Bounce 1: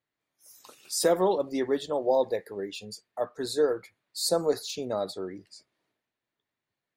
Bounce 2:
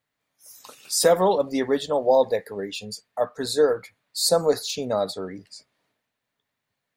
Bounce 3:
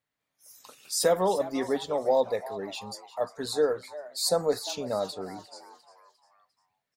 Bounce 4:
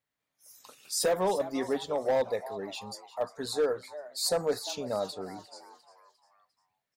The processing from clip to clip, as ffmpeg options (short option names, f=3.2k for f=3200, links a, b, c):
-af "equalizer=f=350:t=o:w=0.2:g=-13.5,volume=6.5dB"
-filter_complex "[0:a]asplit=5[a][b][c][d][e];[b]adelay=351,afreqshift=140,volume=-16dB[f];[c]adelay=702,afreqshift=280,volume=-23.1dB[g];[d]adelay=1053,afreqshift=420,volume=-30.3dB[h];[e]adelay=1404,afreqshift=560,volume=-37.4dB[i];[a][f][g][h][i]amix=inputs=5:normalize=0,volume=-5.5dB"
-af "asoftclip=type=hard:threshold=-19dB,volume=-2dB"